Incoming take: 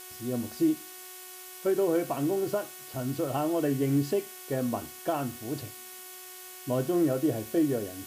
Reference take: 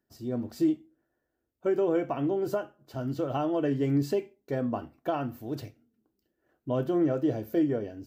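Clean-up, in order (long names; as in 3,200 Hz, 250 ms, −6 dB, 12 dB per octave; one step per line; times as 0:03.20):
hum removal 368.6 Hz, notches 9
noise reduction from a noise print 30 dB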